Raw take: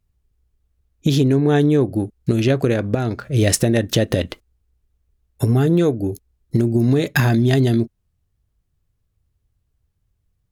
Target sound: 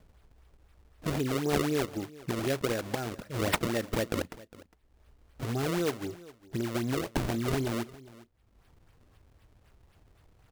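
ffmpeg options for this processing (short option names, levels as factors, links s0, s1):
-af "lowshelf=f=290:g=-11,acompressor=mode=upward:threshold=0.0316:ratio=2.5,acrusher=samples=31:mix=1:aa=0.000001:lfo=1:lforange=49.6:lforate=3.9,aecho=1:1:407:0.1,volume=0.376"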